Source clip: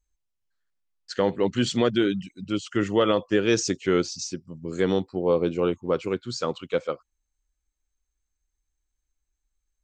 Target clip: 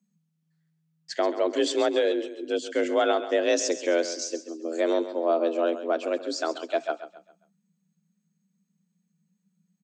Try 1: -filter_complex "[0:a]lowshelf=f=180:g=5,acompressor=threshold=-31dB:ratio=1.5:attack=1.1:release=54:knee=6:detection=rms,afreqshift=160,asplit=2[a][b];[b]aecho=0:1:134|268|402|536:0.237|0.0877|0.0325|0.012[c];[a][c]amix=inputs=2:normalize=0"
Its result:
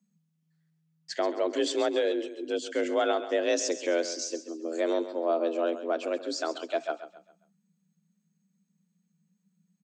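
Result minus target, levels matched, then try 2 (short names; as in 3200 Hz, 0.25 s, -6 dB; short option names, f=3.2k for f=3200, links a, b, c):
compressor: peak gain reduction +3.5 dB
-filter_complex "[0:a]lowshelf=f=180:g=5,acompressor=threshold=-21dB:ratio=1.5:attack=1.1:release=54:knee=6:detection=rms,afreqshift=160,asplit=2[a][b];[b]aecho=0:1:134|268|402|536:0.237|0.0877|0.0325|0.012[c];[a][c]amix=inputs=2:normalize=0"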